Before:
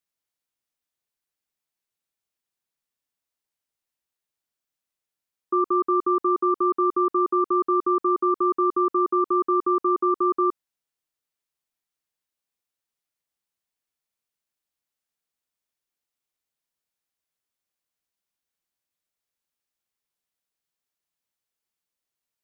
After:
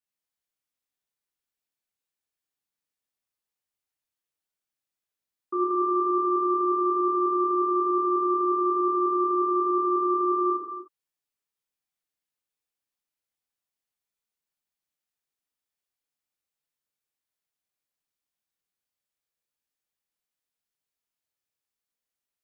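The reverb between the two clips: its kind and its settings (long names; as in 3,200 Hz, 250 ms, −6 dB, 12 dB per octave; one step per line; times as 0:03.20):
reverb whose tail is shaped and stops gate 390 ms falling, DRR −5 dB
level −9 dB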